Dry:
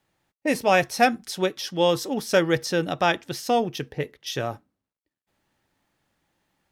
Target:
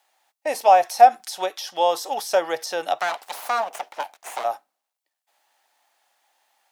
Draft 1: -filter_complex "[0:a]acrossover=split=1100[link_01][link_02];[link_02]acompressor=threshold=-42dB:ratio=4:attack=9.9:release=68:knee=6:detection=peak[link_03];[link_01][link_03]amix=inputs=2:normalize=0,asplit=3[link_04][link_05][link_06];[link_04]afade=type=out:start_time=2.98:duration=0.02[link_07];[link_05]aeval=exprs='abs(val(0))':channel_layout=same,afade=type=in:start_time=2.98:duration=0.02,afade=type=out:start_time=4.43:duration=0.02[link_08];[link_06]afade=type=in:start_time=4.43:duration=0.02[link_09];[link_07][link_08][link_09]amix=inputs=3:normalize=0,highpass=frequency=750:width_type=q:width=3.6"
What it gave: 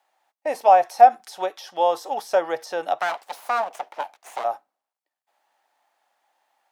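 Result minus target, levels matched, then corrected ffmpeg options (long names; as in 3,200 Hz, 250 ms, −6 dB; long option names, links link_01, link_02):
4,000 Hz band −6.5 dB
-filter_complex "[0:a]acrossover=split=1100[link_01][link_02];[link_02]acompressor=threshold=-42dB:ratio=4:attack=9.9:release=68:knee=6:detection=peak,highshelf=frequency=2200:gain=10[link_03];[link_01][link_03]amix=inputs=2:normalize=0,asplit=3[link_04][link_05][link_06];[link_04]afade=type=out:start_time=2.98:duration=0.02[link_07];[link_05]aeval=exprs='abs(val(0))':channel_layout=same,afade=type=in:start_time=2.98:duration=0.02,afade=type=out:start_time=4.43:duration=0.02[link_08];[link_06]afade=type=in:start_time=4.43:duration=0.02[link_09];[link_07][link_08][link_09]amix=inputs=3:normalize=0,highpass=frequency=750:width_type=q:width=3.6"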